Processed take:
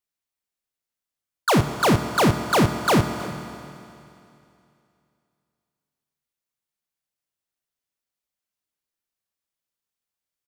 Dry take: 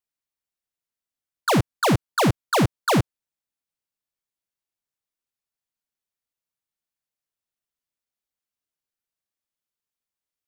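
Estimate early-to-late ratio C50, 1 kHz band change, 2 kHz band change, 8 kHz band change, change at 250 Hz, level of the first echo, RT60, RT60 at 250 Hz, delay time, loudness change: 8.5 dB, +2.0 dB, +2.0 dB, +1.5 dB, +2.0 dB, -18.5 dB, 2.7 s, 2.7 s, 0.32 s, +1.0 dB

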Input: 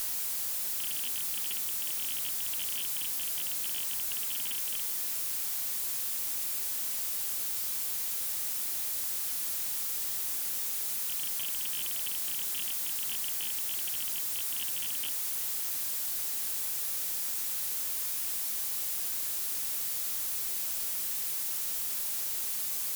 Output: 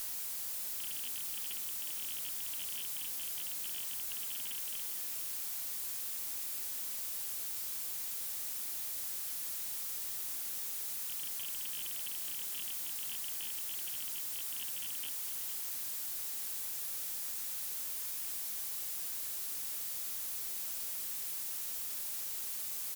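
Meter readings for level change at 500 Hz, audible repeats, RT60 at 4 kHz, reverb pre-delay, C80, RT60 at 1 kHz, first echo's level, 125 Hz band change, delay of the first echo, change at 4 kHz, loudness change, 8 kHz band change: -6.0 dB, 1, none, none, none, none, -11.5 dB, n/a, 0.459 s, -6.0 dB, -6.0 dB, -6.0 dB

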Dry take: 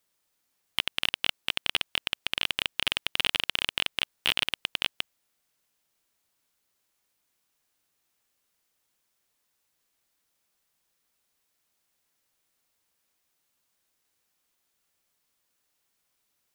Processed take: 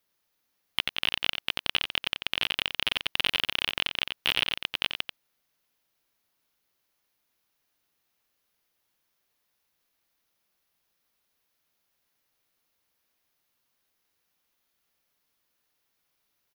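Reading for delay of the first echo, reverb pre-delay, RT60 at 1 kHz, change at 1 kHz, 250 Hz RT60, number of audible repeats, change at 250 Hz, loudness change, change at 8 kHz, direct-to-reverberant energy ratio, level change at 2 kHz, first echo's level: 89 ms, none, none, +0.5 dB, none, 1, +1.0 dB, +0.5 dB, -4.0 dB, none, +0.5 dB, -7.5 dB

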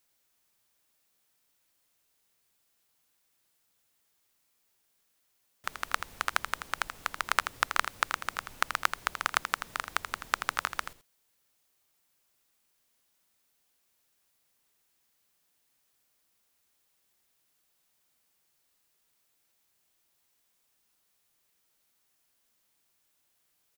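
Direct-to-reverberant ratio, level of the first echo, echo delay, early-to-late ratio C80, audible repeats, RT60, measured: none, -9.0 dB, 82 ms, none, 1, none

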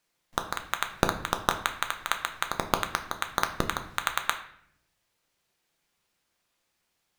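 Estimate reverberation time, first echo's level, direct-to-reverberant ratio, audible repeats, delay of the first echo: 0.65 s, none, 5.0 dB, none, none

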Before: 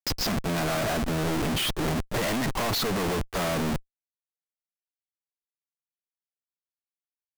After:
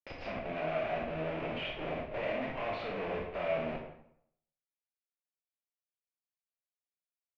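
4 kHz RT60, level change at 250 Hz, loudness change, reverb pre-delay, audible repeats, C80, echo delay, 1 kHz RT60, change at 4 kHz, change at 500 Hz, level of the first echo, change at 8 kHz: 0.55 s, -13.0 dB, -9.0 dB, 20 ms, none, 7.0 dB, none, 0.70 s, -16.5 dB, -4.5 dB, none, under -35 dB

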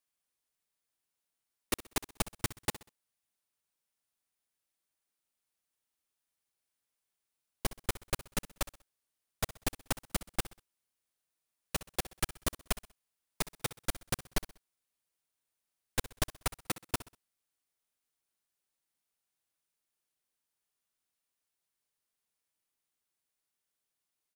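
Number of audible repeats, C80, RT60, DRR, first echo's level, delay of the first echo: 3, none, none, none, -16.5 dB, 64 ms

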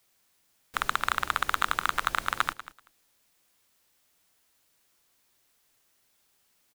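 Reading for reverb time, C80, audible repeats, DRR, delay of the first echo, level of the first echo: none, none, 2, none, 0.191 s, -15.5 dB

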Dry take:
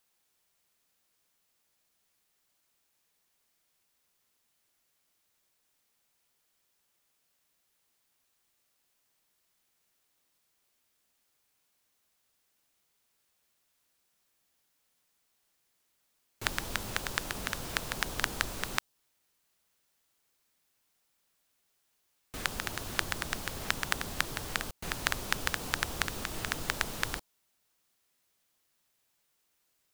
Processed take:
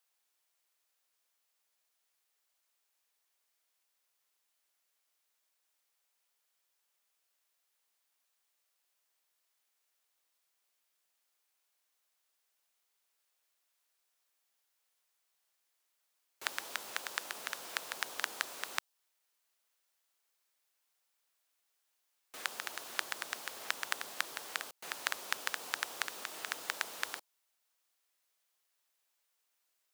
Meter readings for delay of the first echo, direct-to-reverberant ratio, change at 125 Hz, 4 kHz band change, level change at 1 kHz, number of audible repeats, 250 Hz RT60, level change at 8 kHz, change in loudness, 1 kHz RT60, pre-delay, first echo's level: none, none, under -25 dB, -4.5 dB, -5.0 dB, none, none, -4.5 dB, -5.0 dB, none, none, none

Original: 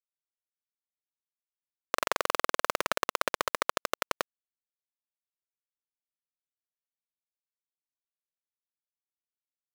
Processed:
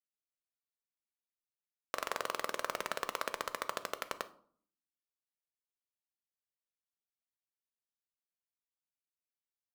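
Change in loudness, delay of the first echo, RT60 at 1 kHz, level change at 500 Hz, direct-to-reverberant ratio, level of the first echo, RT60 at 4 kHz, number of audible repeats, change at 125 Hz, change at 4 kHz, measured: -8.0 dB, none, 0.50 s, -8.0 dB, 10.5 dB, none, 0.35 s, none, -8.0 dB, -8.0 dB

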